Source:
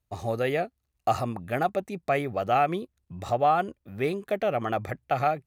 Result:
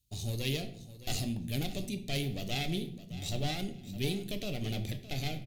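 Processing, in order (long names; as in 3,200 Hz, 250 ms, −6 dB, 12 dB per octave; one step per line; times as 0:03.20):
one-sided soft clipper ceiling −28.5 dBFS
drawn EQ curve 230 Hz 0 dB, 1,300 Hz −27 dB, 2,400 Hz −2 dB, 3,400 Hz +8 dB
repeating echo 614 ms, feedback 24%, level −15 dB
convolution reverb RT60 0.65 s, pre-delay 7 ms, DRR 6.5 dB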